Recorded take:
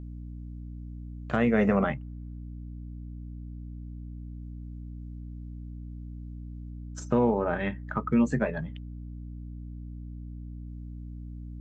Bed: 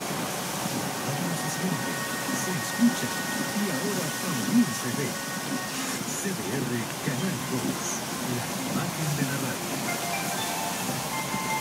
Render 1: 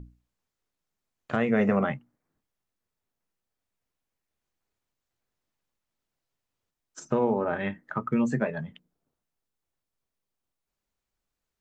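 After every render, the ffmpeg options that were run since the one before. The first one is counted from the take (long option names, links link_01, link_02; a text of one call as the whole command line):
ffmpeg -i in.wav -af "bandreject=frequency=60:width_type=h:width=6,bandreject=frequency=120:width_type=h:width=6,bandreject=frequency=180:width_type=h:width=6,bandreject=frequency=240:width_type=h:width=6,bandreject=frequency=300:width_type=h:width=6" out.wav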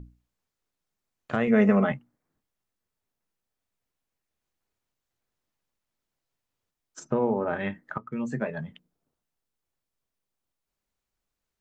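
ffmpeg -i in.wav -filter_complex "[0:a]asettb=1/sr,asplit=3[link_01][link_02][link_03];[link_01]atrim=end=1.474[link_04];[link_02]atrim=start=1.47:end=1.92,asetpts=PTS-STARTPTS,afade=type=in:duration=0.004:curve=qsin,afade=type=out:start_time=0.446:duration=0.004:curve=qsin,aecho=1:1:4.7:0.65,atrim=end_sample=19845[link_05];[link_03]atrim=start=1.916[link_06];[link_04][link_05]acrossfade=duration=0.004:curve1=hsin:curve2=qsin[link_07];[link_07][link_06]acrossfade=duration=0.004:curve1=qsin:curve2=hsin,asplit=3[link_08][link_09][link_10];[link_08]afade=type=out:start_time=7.03:duration=0.02[link_11];[link_09]lowpass=frequency=1600:poles=1,afade=type=in:start_time=7.03:duration=0.02,afade=type=out:start_time=7.46:duration=0.02[link_12];[link_10]afade=type=in:start_time=7.46:duration=0.02[link_13];[link_11][link_12][link_13]amix=inputs=3:normalize=0,asplit=2[link_14][link_15];[link_14]atrim=end=7.98,asetpts=PTS-STARTPTS,afade=type=out:start_time=7.976:duration=0.004:curve=hsin:silence=0.188365[link_16];[link_15]atrim=start=7.98,asetpts=PTS-STARTPTS,afade=type=in:duration=0.65:silence=0.188365[link_17];[link_16][link_17]concat=n=2:v=0:a=1" out.wav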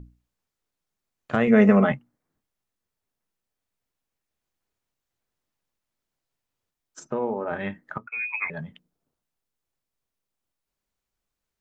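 ffmpeg -i in.wav -filter_complex "[0:a]asettb=1/sr,asplit=3[link_01][link_02][link_03];[link_01]atrim=end=7.074[link_04];[link_02]atrim=start=7.07:end=7.51,asetpts=PTS-STARTPTS,afade=type=in:duration=0.004:curve=qsin,afade=type=out:start_time=0.436:duration=0.004:curve=qsin,equalizer=frequency=79:width=0.4:gain=-9.5[link_05];[link_03]atrim=start=7.506[link_06];[link_04][link_05]acrossfade=duration=0.004:curve1=hsin:curve2=qsin[link_07];[link_07][link_06]acrossfade=duration=0.004:curve1=qsin:curve2=hsin,asettb=1/sr,asplit=3[link_08][link_09][link_10];[link_08]atrim=end=8.074[link_11];[link_09]atrim=start=8.07:end=8.5,asetpts=PTS-STARTPTS,afade=type=in:duration=0.004:curve=qsin,afade=type=out:start_time=0.426:duration=0.004:curve=qsin,lowpass=frequency=2300:width_type=q:width=0.5098,lowpass=frequency=2300:width_type=q:width=0.6013,lowpass=frequency=2300:width_type=q:width=0.9,lowpass=frequency=2300:width_type=q:width=2.563,afreqshift=-2700[link_12];[link_10]atrim=start=8.496[link_13];[link_11][link_12]acrossfade=duration=0.004:curve1=hsin:curve2=qsin[link_14];[link_14][link_13]acrossfade=duration=0.004:curve1=qsin:curve2=hsin,asplit=3[link_15][link_16][link_17];[link_15]atrim=end=1.342[link_18];[link_16]atrim=start=1.338:end=1.952,asetpts=PTS-STARTPTS,volume=4dB[link_19];[link_17]atrim=start=1.948[link_20];[link_18][link_19]acrossfade=duration=0.004:curve1=hsin:curve2=hsin[link_21];[link_21][link_20]acrossfade=duration=0.004:curve1=hsin:curve2=hsin" out.wav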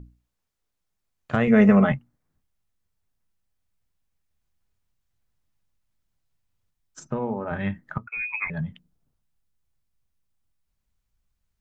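ffmpeg -i in.wav -af "asubboost=boost=5:cutoff=160" out.wav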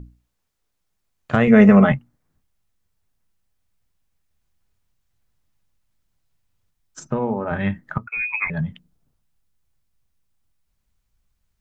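ffmpeg -i in.wav -af "volume=5dB,alimiter=limit=-1dB:level=0:latency=1" out.wav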